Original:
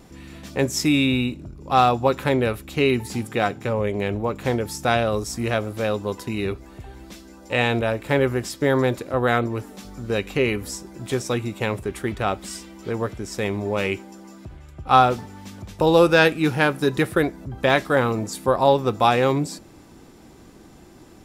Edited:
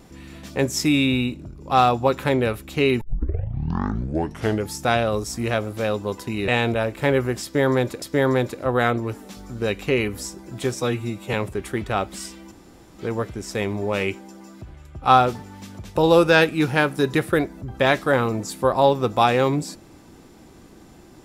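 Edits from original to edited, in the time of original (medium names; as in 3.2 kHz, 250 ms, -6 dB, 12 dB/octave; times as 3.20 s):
3.01 s: tape start 1.70 s
6.48–7.55 s: delete
8.50–9.09 s: loop, 2 plays
11.29–11.64 s: stretch 1.5×
12.82 s: insert room tone 0.47 s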